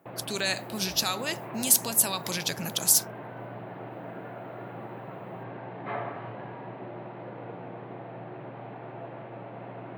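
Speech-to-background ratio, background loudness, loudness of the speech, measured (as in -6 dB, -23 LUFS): 15.0 dB, -40.5 LUFS, -25.5 LUFS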